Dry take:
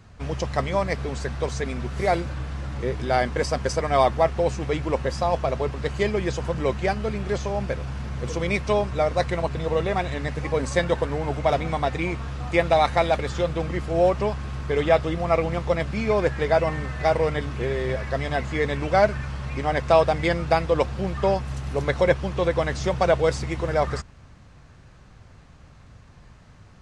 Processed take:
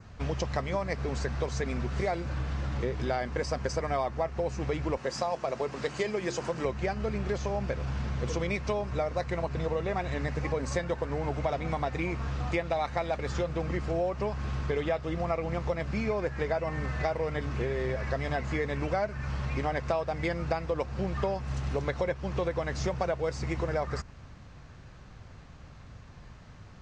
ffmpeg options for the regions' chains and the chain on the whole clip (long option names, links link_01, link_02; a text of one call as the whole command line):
ffmpeg -i in.wav -filter_complex "[0:a]asettb=1/sr,asplit=3[link_01][link_02][link_03];[link_01]atrim=end=4.974[link_04];[link_02]atrim=start=4.97:end=6.65,asetpts=PTS-STARTPTS,afade=type=in:duration=0.004:curve=qsin,afade=type=out:start_time=1.676:duration=0.004:curve=qsin,highpass=180,highshelf=frequency=6500:gain=9.5,bandreject=frequency=50:width_type=h:width=6,bandreject=frequency=100:width_type=h:width=6,bandreject=frequency=150:width_type=h:width=6,bandreject=frequency=200:width_type=h:width=6,bandreject=frequency=250:width_type=h:width=6,bandreject=frequency=300:width_type=h:width=6,bandreject=frequency=350:width_type=h:width=6[link_05];[link_03]atrim=start=6.646[link_06];[link_04][link_05]acrossfade=duration=0.004:curve1=hsin:curve2=qsin[link_07];[link_07][link_06]acrossfade=duration=0.004:curve1=qsin:curve2=hsin,lowpass=frequency=7300:width=0.5412,lowpass=frequency=7300:width=1.3066,adynamicequalizer=threshold=0.00282:dfrequency=3400:dqfactor=2.9:tfrequency=3400:tqfactor=2.9:attack=5:release=100:ratio=0.375:range=3:mode=cutabove:tftype=bell,acompressor=threshold=-27dB:ratio=6" out.wav